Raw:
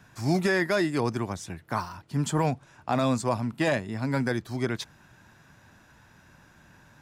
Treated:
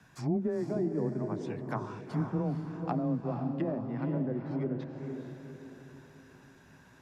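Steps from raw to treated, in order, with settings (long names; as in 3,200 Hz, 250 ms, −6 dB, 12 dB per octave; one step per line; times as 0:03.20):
treble cut that deepens with the level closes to 450 Hz, closed at −23.5 dBFS
frequency shifter +17 Hz
feedback delay with all-pass diffusion 465 ms, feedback 44%, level −5.5 dB
level −4.5 dB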